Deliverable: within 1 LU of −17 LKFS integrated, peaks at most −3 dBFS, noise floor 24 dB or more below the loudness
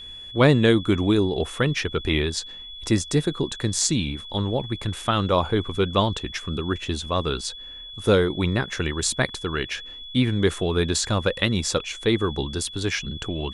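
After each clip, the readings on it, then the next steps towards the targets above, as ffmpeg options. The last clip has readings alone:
interfering tone 3,400 Hz; level of the tone −37 dBFS; integrated loudness −23.5 LKFS; sample peak −5.0 dBFS; target loudness −17.0 LKFS
→ -af "bandreject=frequency=3400:width=30"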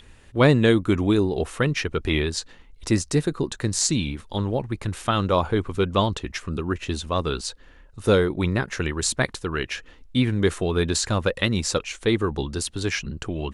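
interfering tone none found; integrated loudness −24.0 LKFS; sample peak −5.0 dBFS; target loudness −17.0 LKFS
→ -af "volume=7dB,alimiter=limit=-3dB:level=0:latency=1"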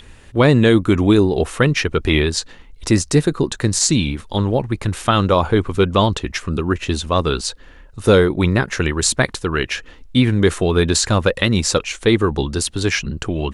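integrated loudness −17.5 LKFS; sample peak −3.0 dBFS; background noise floor −43 dBFS

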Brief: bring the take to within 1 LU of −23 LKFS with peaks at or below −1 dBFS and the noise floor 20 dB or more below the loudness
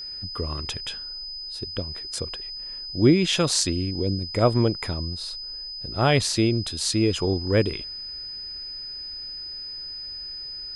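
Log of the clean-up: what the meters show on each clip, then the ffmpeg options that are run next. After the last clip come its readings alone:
interfering tone 5,000 Hz; level of the tone −33 dBFS; integrated loudness −25.5 LKFS; sample peak −5.5 dBFS; target loudness −23.0 LKFS
→ -af "bandreject=frequency=5000:width=30"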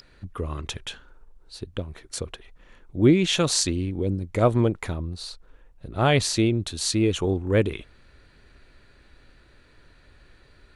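interfering tone none found; integrated loudness −24.0 LKFS; sample peak −6.5 dBFS; target loudness −23.0 LKFS
→ -af "volume=1dB"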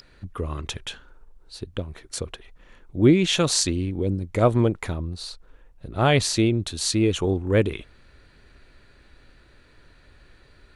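integrated loudness −23.0 LKFS; sample peak −5.5 dBFS; background noise floor −55 dBFS

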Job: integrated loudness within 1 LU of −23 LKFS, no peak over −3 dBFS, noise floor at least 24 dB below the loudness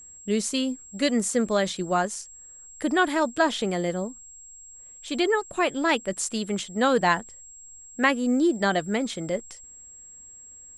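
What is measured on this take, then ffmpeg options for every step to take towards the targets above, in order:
interfering tone 7,600 Hz; level of the tone −44 dBFS; integrated loudness −25.5 LKFS; sample peak −7.0 dBFS; target loudness −23.0 LKFS
→ -af "bandreject=frequency=7600:width=30"
-af "volume=2.5dB"

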